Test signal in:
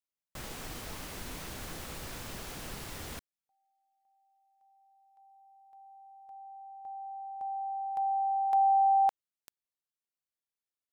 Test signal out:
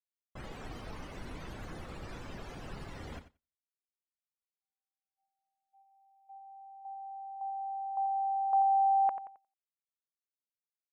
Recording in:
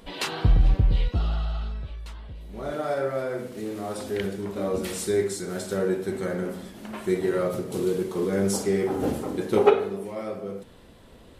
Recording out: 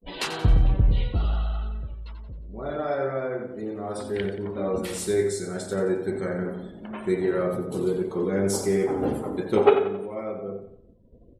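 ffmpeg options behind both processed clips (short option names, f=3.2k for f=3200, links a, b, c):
-af "afftdn=nr=33:nf=-46,aecho=1:1:89|178|267|356|445:0.299|0.128|0.0552|0.0237|0.0102,agate=range=-33dB:threshold=-50dB:ratio=3:release=87:detection=peak"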